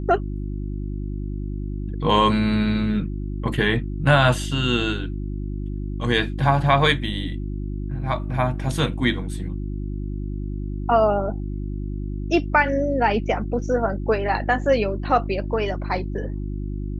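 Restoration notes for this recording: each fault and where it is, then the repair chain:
mains hum 50 Hz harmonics 7 −28 dBFS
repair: hum removal 50 Hz, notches 7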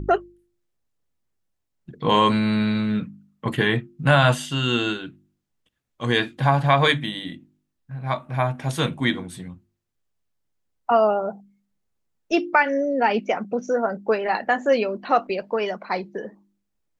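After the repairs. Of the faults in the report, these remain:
none of them is left

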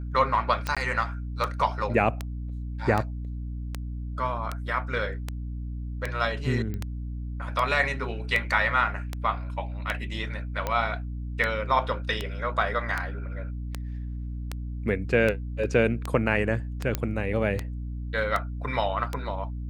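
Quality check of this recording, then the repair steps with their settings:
mains hum 60 Hz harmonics 5 −33 dBFS
scratch tick 78 rpm −14 dBFS
0:00.75–0:00.77: drop-out 16 ms
0:06.74: click −22 dBFS
0:16.95: click −11 dBFS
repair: click removal
hum removal 60 Hz, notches 5
repair the gap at 0:00.75, 16 ms

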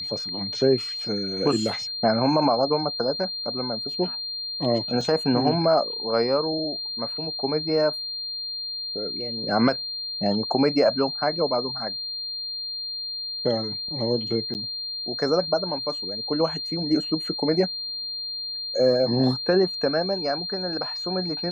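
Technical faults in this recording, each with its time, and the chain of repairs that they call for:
whistle 4,200 Hz −29 dBFS
0:05.01: drop-out 2.4 ms
0:14.54–0:14.55: drop-out 9.6 ms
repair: notch filter 4,200 Hz, Q 30
repair the gap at 0:05.01, 2.4 ms
repair the gap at 0:14.54, 9.6 ms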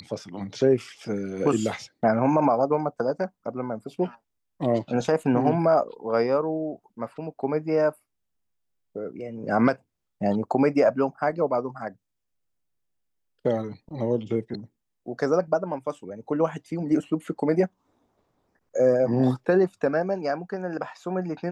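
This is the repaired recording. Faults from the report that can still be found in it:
none of them is left

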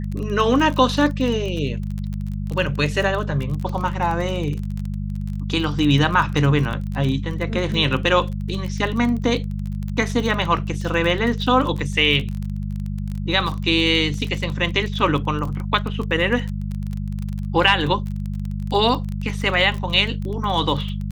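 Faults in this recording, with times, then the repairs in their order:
surface crackle 27 per second −25 dBFS
mains hum 50 Hz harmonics 4 −26 dBFS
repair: click removal
hum removal 50 Hz, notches 4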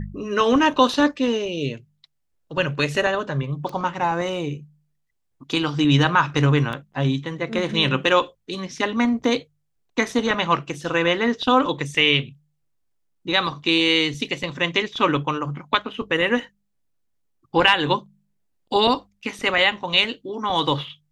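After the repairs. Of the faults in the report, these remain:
none of them is left

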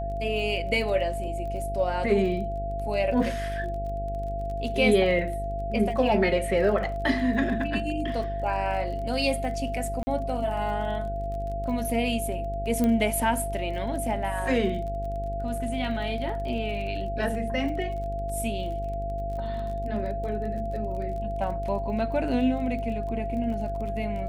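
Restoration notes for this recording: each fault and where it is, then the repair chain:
mains buzz 50 Hz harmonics 16 −33 dBFS
surface crackle 28 per second −36 dBFS
whistle 680 Hz −31 dBFS
0:10.03–0:10.07: drop-out 40 ms
0:12.84: click −14 dBFS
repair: click removal
hum removal 50 Hz, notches 16
notch filter 680 Hz, Q 30
repair the gap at 0:10.03, 40 ms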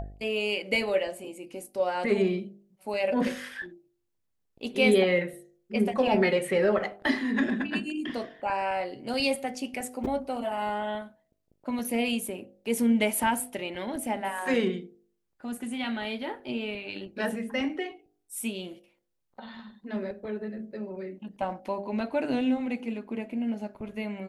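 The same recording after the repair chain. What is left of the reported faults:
0:12.84: click

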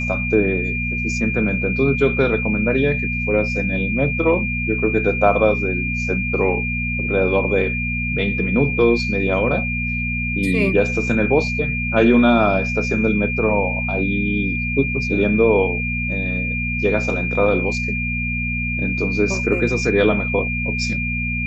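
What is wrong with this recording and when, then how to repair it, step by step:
mains hum 60 Hz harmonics 4 −25 dBFS
whistle 2,400 Hz −23 dBFS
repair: hum removal 60 Hz, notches 4
notch filter 2,400 Hz, Q 30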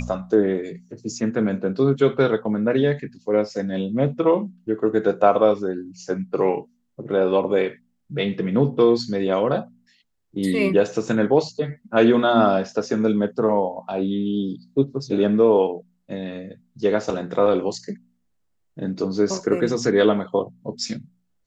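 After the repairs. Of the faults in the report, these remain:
none of them is left

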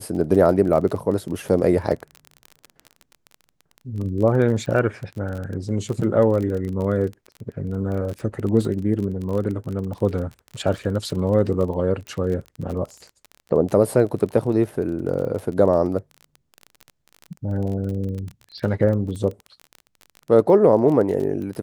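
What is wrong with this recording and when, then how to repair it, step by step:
surface crackle 26 per second −28 dBFS
0:12.07: click −22 dBFS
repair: click removal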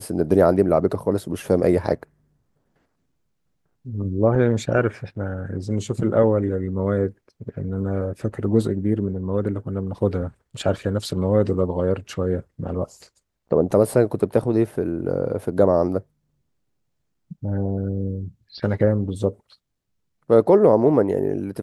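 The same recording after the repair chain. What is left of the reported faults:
none of them is left

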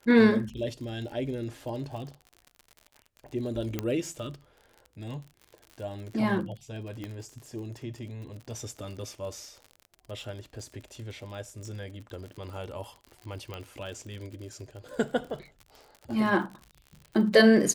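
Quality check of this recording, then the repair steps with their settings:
surface crackle 59 per second −38 dBFS
0:03.79: click −15 dBFS
0:07.04: click −24 dBFS
0:13.54: click −23 dBFS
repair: click removal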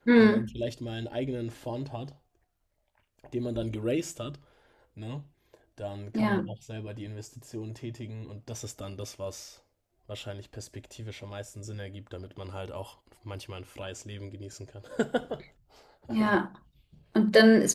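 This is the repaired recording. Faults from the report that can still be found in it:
0:07.04: click

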